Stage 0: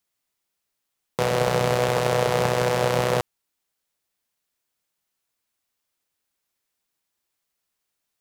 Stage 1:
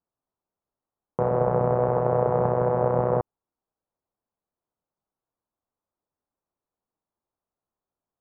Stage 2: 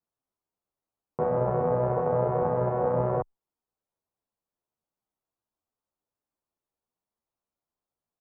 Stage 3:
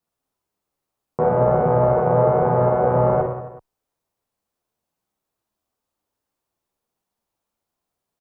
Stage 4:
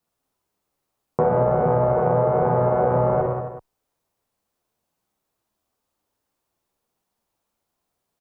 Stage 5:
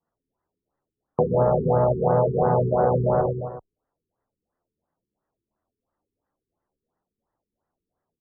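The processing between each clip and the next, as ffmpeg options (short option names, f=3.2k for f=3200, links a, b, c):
-af "lowpass=f=1.1k:w=0.5412,lowpass=f=1.1k:w=1.3066"
-filter_complex "[0:a]asplit=2[a][b];[b]adelay=10.4,afreqshift=2.5[c];[a][c]amix=inputs=2:normalize=1"
-af "aecho=1:1:50|110|182|268.4|372.1:0.631|0.398|0.251|0.158|0.1,volume=7dB"
-af "acompressor=threshold=-19dB:ratio=6,volume=3.5dB"
-af "afftfilt=real='re*lt(b*sr/1024,430*pow(2100/430,0.5+0.5*sin(2*PI*2.9*pts/sr)))':imag='im*lt(b*sr/1024,430*pow(2100/430,0.5+0.5*sin(2*PI*2.9*pts/sr)))':win_size=1024:overlap=0.75"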